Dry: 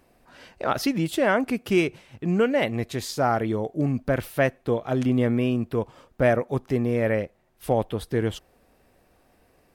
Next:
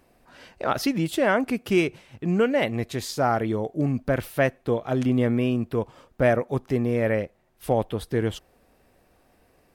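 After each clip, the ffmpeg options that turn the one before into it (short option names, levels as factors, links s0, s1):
-af anull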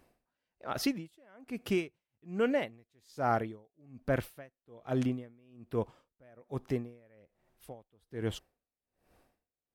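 -af "aeval=exprs='val(0)*pow(10,-35*(0.5-0.5*cos(2*PI*1.2*n/s))/20)':c=same,volume=0.562"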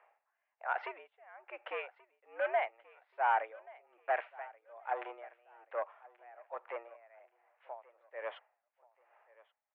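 -af "asoftclip=type=tanh:threshold=0.0473,highpass=f=530:t=q:w=0.5412,highpass=f=530:t=q:w=1.307,lowpass=f=2300:t=q:w=0.5176,lowpass=f=2300:t=q:w=0.7071,lowpass=f=2300:t=q:w=1.932,afreqshift=110,aecho=1:1:1131|2262:0.0794|0.0262,volume=1.78"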